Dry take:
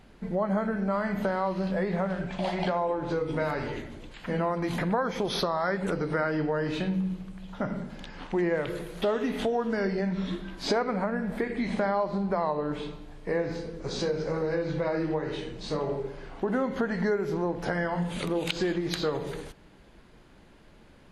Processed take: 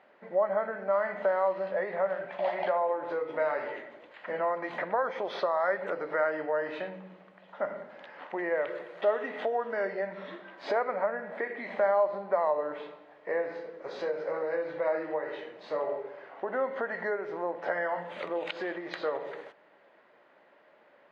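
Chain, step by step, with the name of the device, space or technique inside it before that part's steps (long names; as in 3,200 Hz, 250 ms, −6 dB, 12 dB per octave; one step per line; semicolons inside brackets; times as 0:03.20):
tin-can telephone (band-pass filter 590–2,000 Hz; hollow resonant body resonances 580/1,900 Hz, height 8 dB, ringing for 25 ms)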